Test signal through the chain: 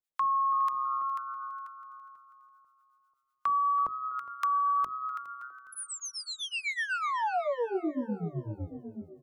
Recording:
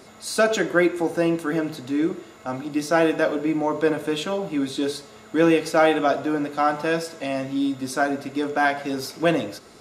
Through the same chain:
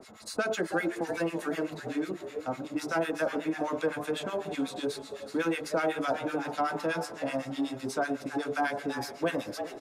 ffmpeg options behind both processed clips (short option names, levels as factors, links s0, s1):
-filter_complex "[0:a]bandreject=f=50:t=h:w=6,bandreject=f=100:t=h:w=6,bandreject=f=150:t=h:w=6,bandreject=f=200:t=h:w=6,bandreject=f=250:t=h:w=6,bandreject=f=300:t=h:w=6,bandreject=f=350:t=h:w=6,bandreject=f=400:t=h:w=6,asplit=2[s0][s1];[s1]asplit=3[s2][s3][s4];[s2]adelay=329,afreqshift=130,volume=0.224[s5];[s3]adelay=658,afreqshift=260,volume=0.0692[s6];[s4]adelay=987,afreqshift=390,volume=0.0216[s7];[s5][s6][s7]amix=inputs=3:normalize=0[s8];[s0][s8]amix=inputs=2:normalize=0,acrossover=split=1100[s9][s10];[s9]aeval=exprs='val(0)*(1-1/2+1/2*cos(2*PI*8*n/s))':c=same[s11];[s10]aeval=exprs='val(0)*(1-1/2-1/2*cos(2*PI*8*n/s))':c=same[s12];[s11][s12]amix=inputs=2:normalize=0,acrossover=split=260|840|2100|6800[s13][s14][s15][s16][s17];[s13]acompressor=threshold=0.0126:ratio=4[s18];[s14]acompressor=threshold=0.0282:ratio=4[s19];[s15]acompressor=threshold=0.0251:ratio=4[s20];[s16]acompressor=threshold=0.00631:ratio=4[s21];[s17]acompressor=threshold=0.00398:ratio=4[s22];[s18][s19][s20][s21][s22]amix=inputs=5:normalize=0,asplit=2[s23][s24];[s24]aecho=0:1:412|824|1236:0.112|0.0438|0.0171[s25];[s23][s25]amix=inputs=2:normalize=0"